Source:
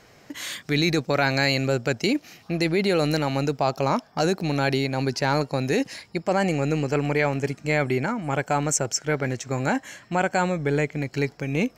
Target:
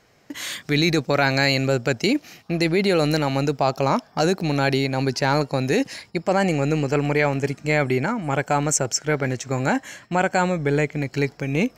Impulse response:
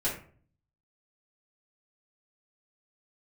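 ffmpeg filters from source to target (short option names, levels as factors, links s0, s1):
-af "agate=range=0.398:threshold=0.00398:ratio=16:detection=peak,volume=1.33"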